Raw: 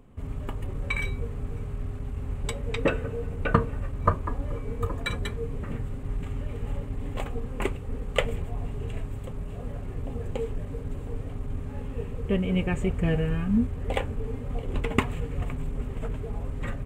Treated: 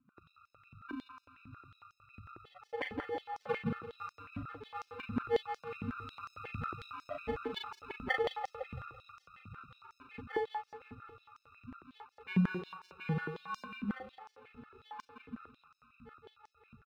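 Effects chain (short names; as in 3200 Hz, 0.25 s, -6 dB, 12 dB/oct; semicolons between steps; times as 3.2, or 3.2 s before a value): Doppler pass-by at 6.92, 5 m/s, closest 5.4 m; high shelf 5100 Hz -6.5 dB; loudest bins only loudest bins 4; sample-and-hold 34×; air absorption 470 m; doubler 39 ms -3.5 dB; feedback echo 0.168 s, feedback 40%, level -7 dB; stepped high-pass 11 Hz 220–5700 Hz; gain +7.5 dB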